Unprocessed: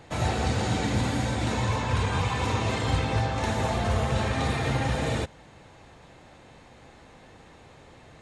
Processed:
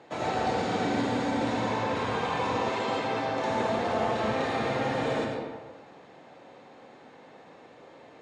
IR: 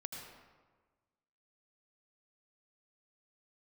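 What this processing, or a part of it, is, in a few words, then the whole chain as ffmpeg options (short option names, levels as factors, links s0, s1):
supermarket ceiling speaker: -filter_complex "[0:a]highpass=340,lowpass=5900[s0];[1:a]atrim=start_sample=2205[s1];[s0][s1]afir=irnorm=-1:irlink=0,asettb=1/sr,asplit=3[s2][s3][s4];[s2]atrim=end=2.694[s5];[s3]atrim=start=2.69:end=3.5,asetpts=PTS-STARTPTS,afade=t=in:d=0.004:c=qsin,afade=t=out:st=0.806:d=0.004:c=qsin,highpass=f=230:p=1[s6];[s4]atrim=start=3.496[s7];[s5][s6]acrossfade=d=0.004:c1=hsin:c2=qsin[s8];[s8][s7]acrossfade=d=0.004:c1=qsin:c2=hsin,tiltshelf=f=840:g=4.5,volume=1.5"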